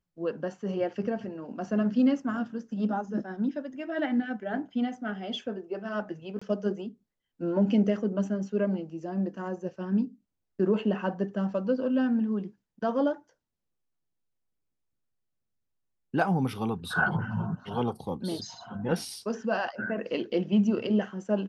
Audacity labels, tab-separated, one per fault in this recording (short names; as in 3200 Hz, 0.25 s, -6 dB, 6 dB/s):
6.390000	6.420000	gap 25 ms